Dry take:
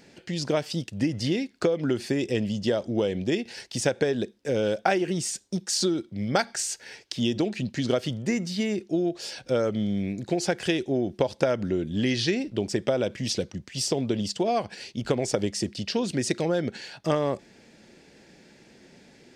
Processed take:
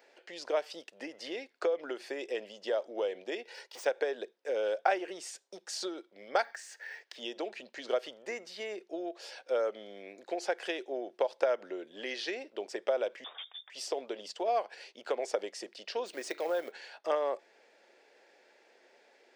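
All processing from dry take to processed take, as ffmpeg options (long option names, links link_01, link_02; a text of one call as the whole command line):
ffmpeg -i in.wav -filter_complex "[0:a]asettb=1/sr,asplit=3[link_01][link_02][link_03];[link_01]atrim=end=3.444[link_04];[link_02]atrim=start=3.44:end=3.86,asetpts=PTS-STARTPTS,afade=type=in:duration=0.004:curve=qsin,afade=type=out:start_time=0.416:duration=0.004:curve=qsin,aecho=1:1:2.1:0.55,atrim=end_sample=18522,asoftclip=type=hard:threshold=-31dB[link_05];[link_03]atrim=start=3.856[link_06];[link_04][link_05]acrossfade=duration=0.004:curve1=hsin:curve2=qsin[link_07];[link_07][link_06]acrossfade=duration=0.004:curve1=qsin:curve2=hsin,asettb=1/sr,asplit=3[link_08][link_09][link_10];[link_08]atrim=end=6.444[link_11];[link_09]atrim=start=6.44:end=7.16,asetpts=PTS-STARTPTS,afade=type=in:duration=0.004:curve=qsin,afade=type=out:start_time=0.716:duration=0.004:curve=qsin,equalizer=frequency=1800:width_type=o:width=0.26:gain=14,acrusher=bits=7:mode=log:mix=0:aa=0.000001,acompressor=threshold=-34dB:ratio=3:attack=3.2:release=140:knee=1:detection=peak[link_12];[link_10]atrim=start=7.156[link_13];[link_11][link_12]acrossfade=duration=0.004:curve1=hsin:curve2=qsin[link_14];[link_14][link_13]acrossfade=duration=0.004:curve1=qsin:curve2=hsin,asettb=1/sr,asplit=3[link_15][link_16][link_17];[link_15]atrim=end=13.244[link_18];[link_16]atrim=start=13.24:end=13.7,asetpts=PTS-STARTPTS,afade=type=in:duration=0.004:curve=qsin,afade=type=out:start_time=0.456:duration=0.004:curve=qsin,volume=31.5dB,asoftclip=hard,volume=-31.5dB,lowpass=frequency=3100:width_type=q:width=0.5098,lowpass=frequency=3100:width_type=q:width=0.6013,lowpass=frequency=3100:width_type=q:width=0.9,lowpass=frequency=3100:width_type=q:width=2.563,afreqshift=-3700[link_19];[link_17]atrim=start=13.696[link_20];[link_18][link_19]acrossfade=duration=0.004:curve1=hsin:curve2=qsin[link_21];[link_21][link_20]acrossfade=duration=0.004:curve1=qsin:curve2=hsin,asettb=1/sr,asplit=3[link_22][link_23][link_24];[link_22]atrim=end=16.064[link_25];[link_23]atrim=start=16.06:end=16.72,asetpts=PTS-STARTPTS,afade=type=in:duration=0.004:curve=qsin,afade=type=out:start_time=0.656:duration=0.004:curve=qsin,bandreject=frequency=149.6:width_type=h:width=4,bandreject=frequency=299.2:width_type=h:width=4,bandreject=frequency=448.8:width_type=h:width=4,bandreject=frequency=598.4:width_type=h:width=4,bandreject=frequency=748:width_type=h:width=4,bandreject=frequency=897.6:width_type=h:width=4,bandreject=frequency=1047.2:width_type=h:width=4,bandreject=frequency=1196.8:width_type=h:width=4,bandreject=frequency=1346.4:width_type=h:width=4,bandreject=frequency=1496:width_type=h:width=4,bandreject=frequency=1645.6:width_type=h:width=4,bandreject=frequency=1795.2:width_type=h:width=4,bandreject=frequency=1944.8:width_type=h:width=4,bandreject=frequency=2094.4:width_type=h:width=4,bandreject=frequency=2244:width_type=h:width=4,bandreject=frequency=2393.6:width_type=h:width=4,bandreject=frequency=2543.2:width_type=h:width=4,bandreject=frequency=2692.8:width_type=h:width=4,bandreject=frequency=2842.4:width_type=h:width=4,bandreject=frequency=2992:width_type=h:width=4,bandreject=frequency=3141.6:width_type=h:width=4,bandreject=frequency=3291.2:width_type=h:width=4,bandreject=frequency=3440.8:width_type=h:width=4,bandreject=frequency=3590.4:width_type=h:width=4,bandreject=frequency=3740:width_type=h:width=4,bandreject=frequency=3889.6:width_type=h:width=4,bandreject=frequency=4039.2:width_type=h:width=4,bandreject=frequency=4188.8:width_type=h:width=4,bandreject=frequency=4338.4:width_type=h:width=4,acrusher=bits=5:mode=log:mix=0:aa=0.000001[link_26];[link_24]atrim=start=16.716[link_27];[link_25][link_26]acrossfade=duration=0.004:curve1=hsin:curve2=qsin[link_28];[link_28][link_27]acrossfade=duration=0.004:curve1=qsin:curve2=hsin,highpass=frequency=480:width=0.5412,highpass=frequency=480:width=1.3066,equalizer=frequency=9300:width=0.3:gain=-12,volume=-2.5dB" out.wav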